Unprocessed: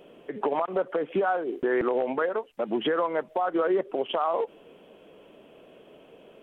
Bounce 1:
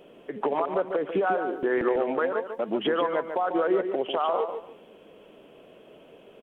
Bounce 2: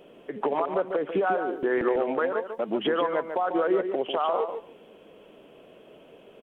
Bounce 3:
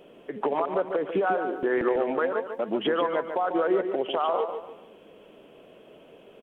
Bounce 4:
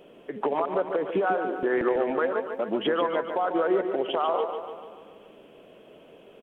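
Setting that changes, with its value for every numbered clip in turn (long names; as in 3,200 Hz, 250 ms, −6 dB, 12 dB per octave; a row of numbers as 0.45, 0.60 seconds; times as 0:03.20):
repeating echo, feedback: 24, 15, 35, 56%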